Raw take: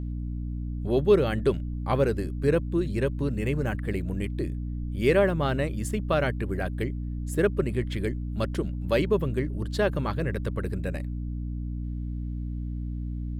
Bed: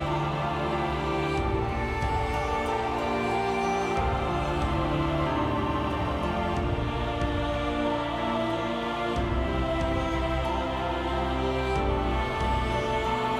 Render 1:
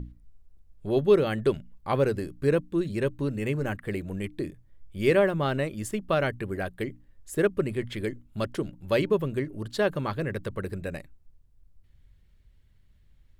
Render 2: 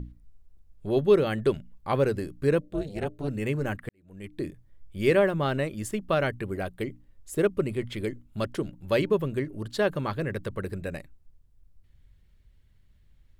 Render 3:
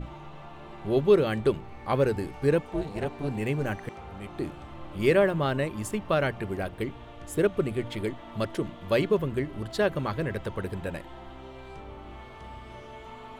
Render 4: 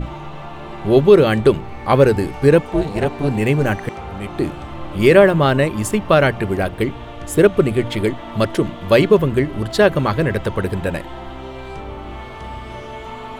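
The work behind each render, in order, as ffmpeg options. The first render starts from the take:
-af "bandreject=f=60:t=h:w=6,bandreject=f=120:t=h:w=6,bandreject=f=180:t=h:w=6,bandreject=f=240:t=h:w=6,bandreject=f=300:t=h:w=6"
-filter_complex "[0:a]asettb=1/sr,asplit=3[s0][s1][s2];[s0]atrim=end=2.614[s3];[s1]atrim=start=2.61:end=3.28,asetpts=PTS-STARTPTS,afade=t=in:d=0.004:c=qsin,afade=t=out:st=0.666:d=0.004:c=qsin,tremolo=f=300:d=0.919[s4];[s2]atrim=start=3.276[s5];[s3][s4]acrossfade=d=0.004:c1=hsin:c2=qsin[s6];[s6][s5]acrossfade=d=0.004:c1=qsin:c2=hsin,asettb=1/sr,asplit=3[s7][s8][s9];[s7]atrim=end=6.444[s10];[s8]atrim=start=6.44:end=8.09,asetpts=PTS-STARTPTS,afade=t=in:d=0.004:c=qsin,afade=t=out:st=1.646:d=0.004:c=qsin,equalizer=f=1700:t=o:w=0.22:g=-7[s11];[s9]atrim=start=8.086[s12];[s10][s11]acrossfade=d=0.004:c1=hsin:c2=qsin[s13];[s13][s12]acrossfade=d=0.004:c1=qsin:c2=hsin,asplit=2[s14][s15];[s14]atrim=end=3.89,asetpts=PTS-STARTPTS,afade=t=out:st=3.886:d=0.004:c=hsin[s16];[s15]atrim=start=3.89,asetpts=PTS-STARTPTS,afade=t=in:d=0.54:c=qua[s17];[s16][s17]concat=n=2:v=0:a=1"
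-filter_complex "[1:a]volume=0.141[s0];[0:a][s0]amix=inputs=2:normalize=0"
-af "volume=3.98,alimiter=limit=0.891:level=0:latency=1"

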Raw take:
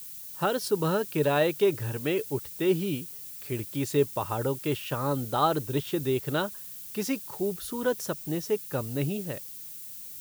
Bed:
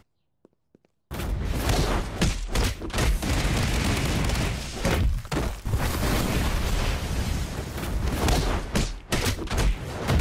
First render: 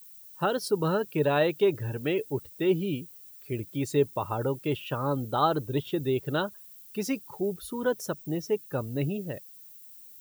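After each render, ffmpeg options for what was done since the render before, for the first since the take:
-af "afftdn=nr=12:nf=-42"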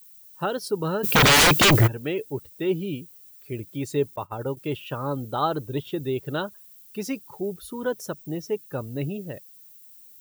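-filter_complex "[0:a]asplit=3[s0][s1][s2];[s0]afade=t=out:st=1.03:d=0.02[s3];[s1]aeval=exprs='0.251*sin(PI/2*10*val(0)/0.251)':c=same,afade=t=in:st=1.03:d=0.02,afade=t=out:st=1.86:d=0.02[s4];[s2]afade=t=in:st=1.86:d=0.02[s5];[s3][s4][s5]amix=inputs=3:normalize=0,asettb=1/sr,asplit=3[s6][s7][s8];[s6]atrim=end=4.164[s9];[s7]atrim=start=4.16:end=4.57,asetpts=PTS-STARTPTS,afade=t=in:d=0.004:c=qsin,afade=t=out:st=0.406:d=0.004:c=qsin,agate=range=0.0224:threshold=0.0398:ratio=3:release=100:detection=peak[s10];[s8]atrim=start=4.566[s11];[s9][s10]acrossfade=d=0.004:c1=hsin:c2=qsin[s12];[s12][s11]acrossfade=d=0.004:c1=qsin:c2=hsin"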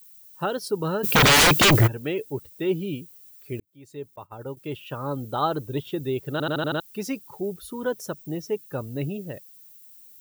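-filter_complex "[0:a]asplit=8[s0][s1][s2][s3][s4][s5][s6][s7];[s0]atrim=end=3.6,asetpts=PTS-STARTPTS,afade=t=out:st=3.596:d=0.004:c=hsin[s8];[s1]atrim=start=3.6:end=6.402,asetpts=PTS-STARTPTS,afade=t=in:d=1.73[s9];[s2]atrim=start=6.318:end=6.402[s10];[s3]atrim=start=6.318:end=6.402[s11];[s4]atrim=start=6.318:end=6.402[s12];[s5]atrim=start=6.318:end=6.402[s13];[s6]atrim=start=6.318:end=6.402[s14];[s7]atrim=start=6.798[s15];[s8][s9]concat=n=2:v=0:a=1[s16];[s16][s10]acrossfade=d=0.004:c1=hsin:c2=hsin[s17];[s17][s11]acrossfade=d=0.004:c1=hsin:c2=hsin[s18];[s18][s12]acrossfade=d=0.004:c1=hsin:c2=hsin[s19];[s19][s13]acrossfade=d=0.004:c1=hsin:c2=hsin[s20];[s20][s14]acrossfade=d=0.004:c1=hsin:c2=hsin[s21];[s21][s15]acrossfade=d=0.004:c1=hsin:c2=hsin"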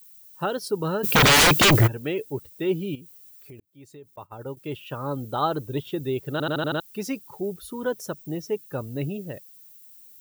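-filter_complex "[0:a]asettb=1/sr,asplit=3[s0][s1][s2];[s0]atrim=end=2.954[s3];[s1]atrim=start=2.95:end=4.14,asetpts=PTS-STARTPTS,afade=t=in:d=0.004:c=qsin,afade=t=out:st=1.186:d=0.004:c=qsin,acompressor=threshold=0.00891:ratio=6:attack=3.2:release=140:knee=1:detection=peak[s4];[s2]atrim=start=4.136[s5];[s3][s4]acrossfade=d=0.004:c1=hsin:c2=qsin[s6];[s6][s5]acrossfade=d=0.004:c1=qsin:c2=hsin"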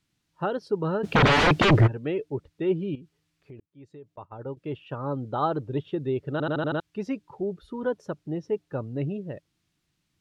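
-af "lowpass=4000,highshelf=f=2300:g=-10"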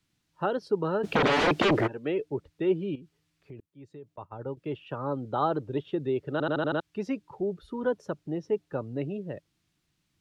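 -filter_complex "[0:a]acrossover=split=220|640[s0][s1][s2];[s0]acompressor=threshold=0.0112:ratio=6[s3];[s2]alimiter=limit=0.112:level=0:latency=1:release=93[s4];[s3][s1][s4]amix=inputs=3:normalize=0"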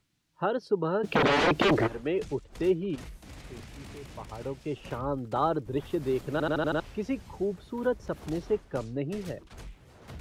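-filter_complex "[1:a]volume=0.0841[s0];[0:a][s0]amix=inputs=2:normalize=0"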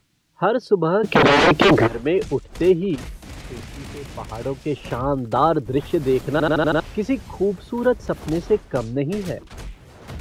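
-af "volume=2.99"

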